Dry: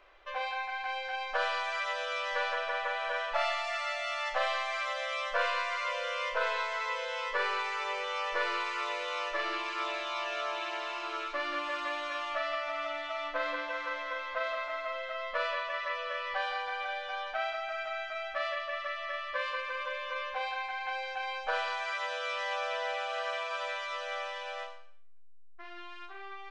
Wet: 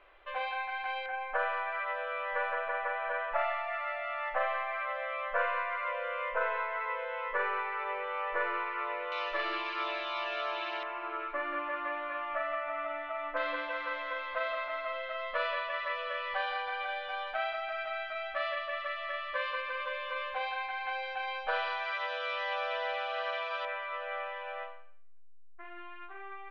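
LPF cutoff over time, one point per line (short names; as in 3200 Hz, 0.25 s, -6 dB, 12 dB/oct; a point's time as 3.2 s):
LPF 24 dB/oct
3500 Hz
from 1.06 s 2200 Hz
from 9.12 s 4200 Hz
from 10.83 s 2200 Hz
from 13.37 s 4000 Hz
from 23.65 s 2500 Hz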